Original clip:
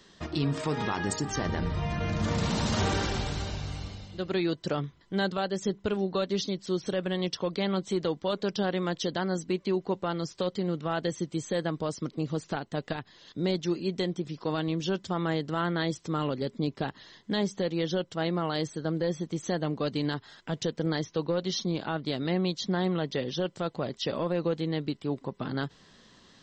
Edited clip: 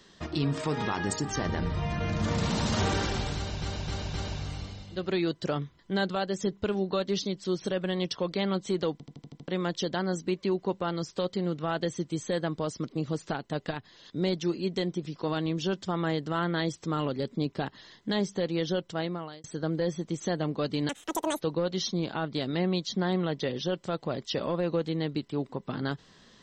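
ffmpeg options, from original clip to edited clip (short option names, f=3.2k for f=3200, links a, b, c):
-filter_complex "[0:a]asplit=14[a][b][c][d][e][f][g][h][i][j][k][l][m][n];[a]atrim=end=3.622[o];[b]atrim=start=3.358:end=3.622[p];[c]atrim=start=3.358:end=3.622[q];[d]atrim=start=3.358:end=8.222[r];[e]atrim=start=8.138:end=8.222[s];[f]atrim=start=8.138:end=8.222[t];[g]atrim=start=8.138:end=8.222[u];[h]atrim=start=8.138:end=8.222[v];[i]atrim=start=8.138:end=8.222[w];[j]atrim=start=8.138:end=8.222[x];[k]atrim=start=8.698:end=18.66,asetpts=PTS-STARTPTS,afade=t=out:st=9.422:d=0.54[y];[l]atrim=start=18.66:end=20.114,asetpts=PTS-STARTPTS,afade=t=in:d=0.004:c=hsin[z];[m]atrim=start=20.11:end=21.13,asetpts=PTS-STARTPTS,asetrate=86436,aresample=44100[aa];[n]atrim=start=21.126[ab];[o][p]acrossfade=d=0.004:c1=hsin:c2=hsin[ac];[ac][q]acrossfade=d=0.004:c1=hsin:c2=hsin[ad];[ad][r]acrossfade=d=0.004:c1=hsin:c2=hsin[ae];[ae][s]acrossfade=d=0.004:c1=hsin:c2=hsin[af];[af][t]acrossfade=d=0.004:c1=hsin:c2=hsin[ag];[ag][u]acrossfade=d=0.004:c1=hsin:c2=hsin[ah];[ah][v]acrossfade=d=0.004:c1=hsin:c2=hsin[ai];[ai][w]acrossfade=d=0.004:c1=hsin:c2=hsin[aj];[aj][x]acrossfade=d=0.004:c1=hsin:c2=hsin[ak];[y][z]concat=n=2:v=0:a=1[al];[ak][al]acrossfade=d=0.004:c1=hsin:c2=hsin[am];[am][aa]acrossfade=d=0.004:c1=hsin:c2=hsin[an];[an][ab]acrossfade=d=0.004:c1=hsin:c2=hsin"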